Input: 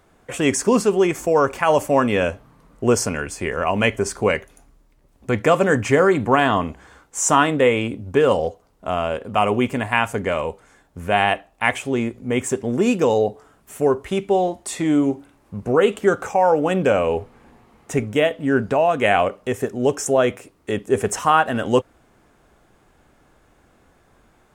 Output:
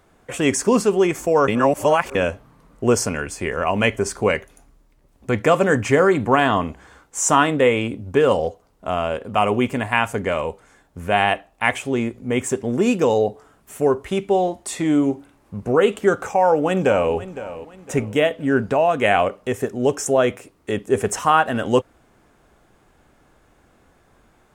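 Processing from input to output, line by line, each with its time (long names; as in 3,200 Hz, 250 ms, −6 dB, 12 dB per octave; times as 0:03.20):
0:01.48–0:02.15: reverse
0:16.25–0:17.13: delay throw 510 ms, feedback 35%, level −14.5 dB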